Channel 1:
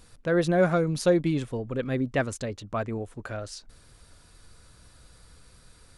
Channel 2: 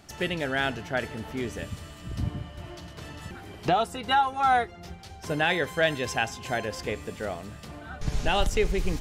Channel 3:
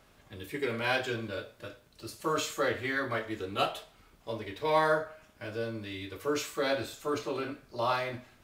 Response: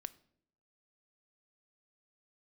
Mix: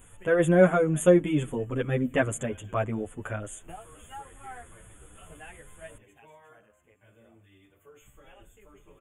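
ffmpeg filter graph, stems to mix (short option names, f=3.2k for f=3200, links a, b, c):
-filter_complex "[0:a]volume=1.5dB,asplit=3[a][b][c];[b]volume=-5.5dB[d];[1:a]bandreject=f=3.4k:w=5.1,volume=-18.5dB[e];[2:a]equalizer=f=83:w=1.3:g=7.5,acompressor=threshold=-30dB:ratio=6,adelay=1600,volume=-18dB[f];[c]apad=whole_len=397158[g];[e][g]sidechaingate=range=-10dB:threshold=-51dB:ratio=16:detection=peak[h];[3:a]atrim=start_sample=2205[i];[d][i]afir=irnorm=-1:irlink=0[j];[a][h][f][j]amix=inputs=4:normalize=0,asuperstop=centerf=4800:order=20:qfactor=1.6,highshelf=f=6.1k:g=5.5,asplit=2[k][l];[l]adelay=9.1,afreqshift=1.9[m];[k][m]amix=inputs=2:normalize=1"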